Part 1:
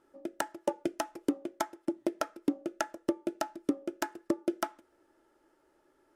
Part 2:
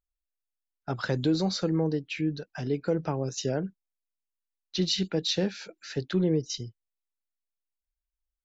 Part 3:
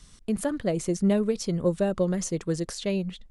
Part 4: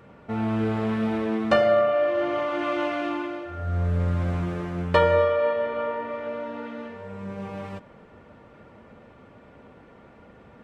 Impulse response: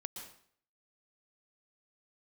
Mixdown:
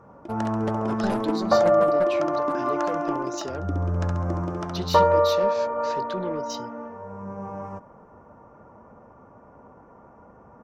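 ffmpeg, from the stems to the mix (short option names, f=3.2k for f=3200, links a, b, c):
-filter_complex "[0:a]lowpass=f=6.8k:w=0.5412,lowpass=f=6.8k:w=1.3066,volume=-4.5dB,asplit=2[a][b];[b]volume=-4dB[c];[1:a]highpass=210,asoftclip=type=tanh:threshold=-25.5dB,volume=-1dB[d];[2:a]acrusher=bits=2:mix=0:aa=0.5,volume=-5dB[e];[3:a]firequalizer=gain_entry='entry(420,0);entry(990,8);entry(1900,-11);entry(4000,-26);entry(5700,0);entry(8300,-13)':delay=0.05:min_phase=1,volume=-1.5dB[f];[c]aecho=0:1:68|136|204|272|340|408:1|0.43|0.185|0.0795|0.0342|0.0147[g];[a][d][e][f][g]amix=inputs=5:normalize=0"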